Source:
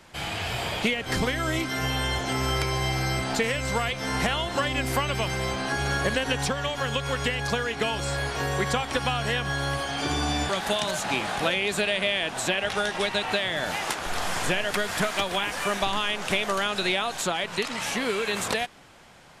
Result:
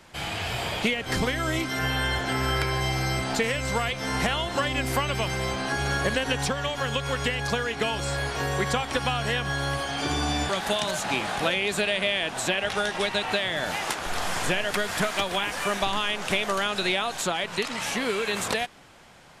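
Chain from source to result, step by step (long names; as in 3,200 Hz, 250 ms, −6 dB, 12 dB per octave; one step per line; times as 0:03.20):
0:01.79–0:02.81: thirty-one-band graphic EQ 1,600 Hz +7 dB, 6,300 Hz −6 dB, 10,000 Hz −3 dB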